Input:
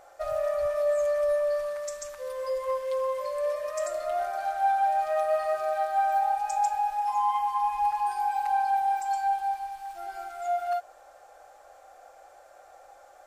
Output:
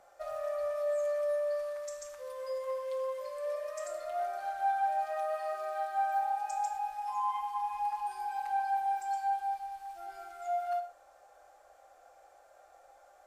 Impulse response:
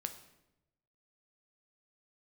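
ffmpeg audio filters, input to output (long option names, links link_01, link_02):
-filter_complex "[0:a]asettb=1/sr,asplit=3[link_01][link_02][link_03];[link_01]atrim=end=5.044[link_04];[link_02]atrim=start=5.04:end=6.51,asetpts=PTS-STARTPTS,afade=type=in:duration=0.004:curve=qsin,afade=type=out:start_time=1.466:duration=0.004:curve=qsin,highpass=frequency=140:width=0.5412,highpass=frequency=140:width=1.3066[link_05];[link_03]atrim=start=6.506[link_06];[link_04][link_05]acrossfade=duration=0.004:curve1=hsin:curve2=qsin[link_07];[link_07][link_06]acrossfade=duration=0.004:curve1=qsin:curve2=hsin,acrossover=split=310|1000[link_08][link_09][link_10];[link_08]acompressor=threshold=-57dB:ratio=6[link_11];[link_11][link_09][link_10]amix=inputs=3:normalize=0[link_12];[1:a]atrim=start_sample=2205,atrim=end_sample=3969,asetrate=30870,aresample=44100[link_13];[link_12][link_13]afir=irnorm=-1:irlink=0,volume=-7.5dB"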